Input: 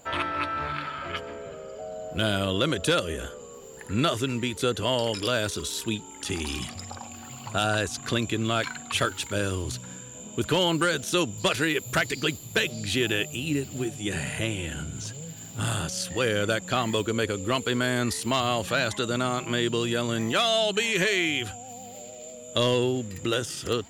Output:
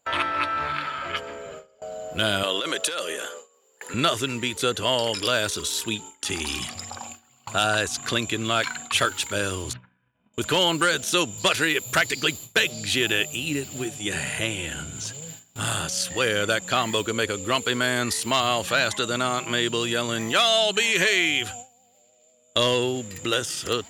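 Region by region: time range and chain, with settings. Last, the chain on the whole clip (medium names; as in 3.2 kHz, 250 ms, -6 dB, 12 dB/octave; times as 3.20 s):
2.43–3.94 s: high-pass 390 Hz + compressor with a negative ratio -29 dBFS
9.73–10.34 s: low-pass 2.2 kHz 24 dB/octave + peaking EQ 460 Hz -14.5 dB 0.97 oct + transient shaper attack +10 dB, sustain -8 dB
whole clip: gate with hold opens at -29 dBFS; bass shelf 470 Hz -8.5 dB; trim +5 dB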